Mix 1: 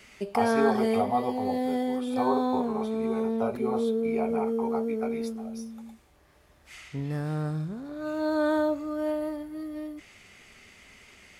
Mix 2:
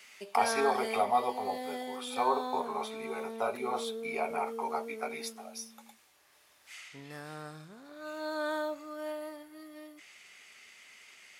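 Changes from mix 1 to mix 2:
speech +7.0 dB; master: add high-pass 1.5 kHz 6 dB/octave

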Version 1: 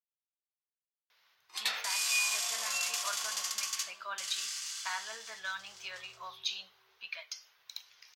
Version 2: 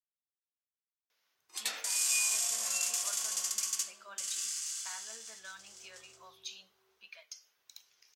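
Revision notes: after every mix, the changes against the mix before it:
speech -5.0 dB; master: add graphic EQ 125/250/1000/2000/4000/8000 Hz -7/+10/-6/-4/-6/+7 dB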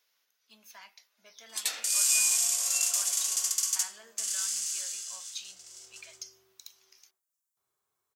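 speech: entry -1.10 s; master: add treble shelf 4.4 kHz +7.5 dB

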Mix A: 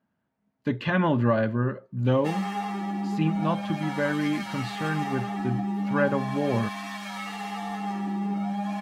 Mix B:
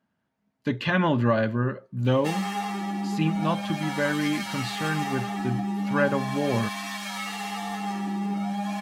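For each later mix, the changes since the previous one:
master: add treble shelf 2.9 kHz +9 dB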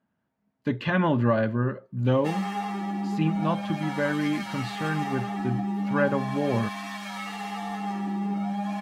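master: add treble shelf 2.9 kHz -9 dB

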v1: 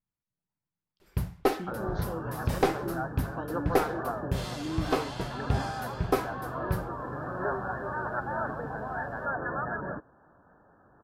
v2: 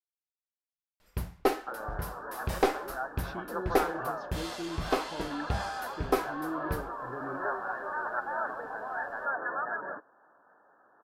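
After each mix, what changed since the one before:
speech: entry +1.75 s; second sound: add frequency weighting A; master: add peaking EQ 130 Hz -8.5 dB 1.3 oct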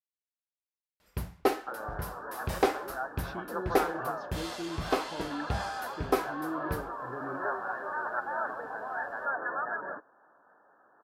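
master: add high-pass 52 Hz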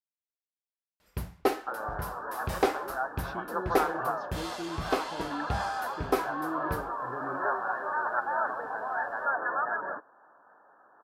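second sound: add peaking EQ 980 Hz +5 dB 1.4 oct

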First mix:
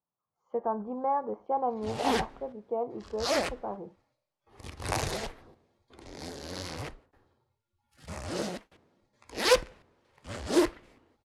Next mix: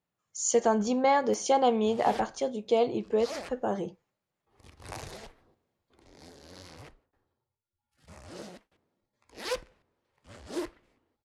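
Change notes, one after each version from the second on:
speech: remove four-pole ladder low-pass 1.2 kHz, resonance 50%; background -10.5 dB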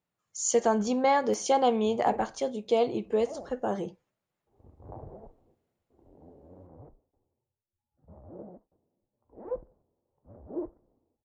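background: add inverse Chebyshev low-pass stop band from 4.6 kHz, stop band 80 dB

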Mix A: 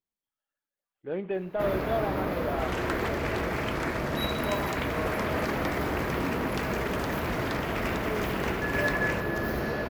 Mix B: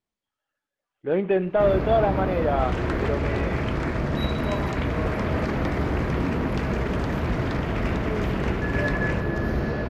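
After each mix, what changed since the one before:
speech +9.5 dB; first sound: add bass shelf 240 Hz +10.5 dB; master: add distance through air 60 m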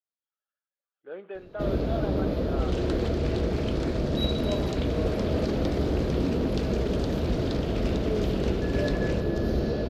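speech: add band-pass filter 1.4 kHz, Q 2.6; master: add graphic EQ 125/500/1000/2000/4000 Hz -4/+4/-9/-11/+7 dB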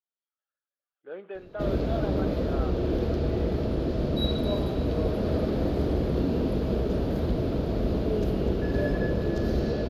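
second sound: muted

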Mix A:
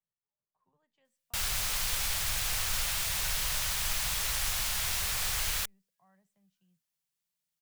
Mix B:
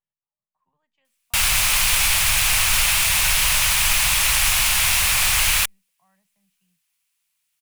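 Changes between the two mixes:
background +10.5 dB; master: add fifteen-band graphic EQ 400 Hz -6 dB, 1 kHz +4 dB, 2.5 kHz +8 dB, 10 kHz +5 dB

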